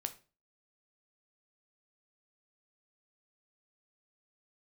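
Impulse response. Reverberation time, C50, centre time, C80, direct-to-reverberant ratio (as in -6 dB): 0.35 s, 15.5 dB, 5 ms, 21.0 dB, 8.0 dB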